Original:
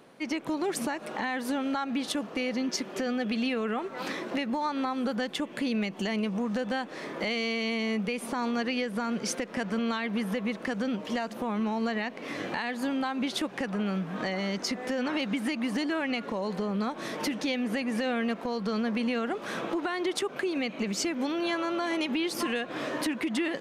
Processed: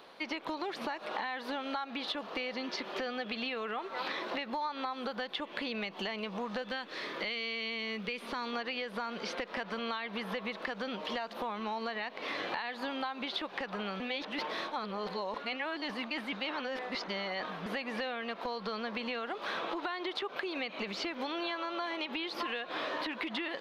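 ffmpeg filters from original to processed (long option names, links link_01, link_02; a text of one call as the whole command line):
ffmpeg -i in.wav -filter_complex "[0:a]asettb=1/sr,asplit=3[link_01][link_02][link_03];[link_01]atrim=end=6.624[link_04];[link_02]atrim=start=6.62:end=8.53,asetpts=PTS-STARTPTS,afade=type=in:duration=0.004:curve=qsin,afade=type=out:start_time=1.906:duration=0.004:curve=qsin,equalizer=frequency=790:width=1.3:gain=-8.5[link_05];[link_03]atrim=start=8.526[link_06];[link_04][link_05]acrossfade=duration=0.004:curve1=hsin:curve2=qsin[link_07];[link_07][link_06]acrossfade=duration=0.004:curve1=qsin:curve2=hsin,asplit=3[link_08][link_09][link_10];[link_08]atrim=end=14.002[link_11];[link_09]atrim=start=13.998:end=17.662,asetpts=PTS-STARTPTS,areverse[link_12];[link_10]atrim=start=17.658[link_13];[link_11][link_12]acrossfade=duration=0.004:curve1=hsin:curve2=hsin[link_14];[link_14][link_13]acrossfade=duration=0.004:curve1=hsin:curve2=hsin,acrossover=split=3700[link_15][link_16];[link_16]acompressor=threshold=-52dB:ratio=4:attack=1:release=60[link_17];[link_15][link_17]amix=inputs=2:normalize=0,equalizer=frequency=125:width_type=o:width=1:gain=-12,equalizer=frequency=250:width_type=o:width=1:gain=-6,equalizer=frequency=1000:width_type=o:width=1:gain=5,equalizer=frequency=4000:width_type=o:width=1:gain=11,equalizer=frequency=8000:width_type=o:width=1:gain=-10,acompressor=threshold=-33dB:ratio=6" out.wav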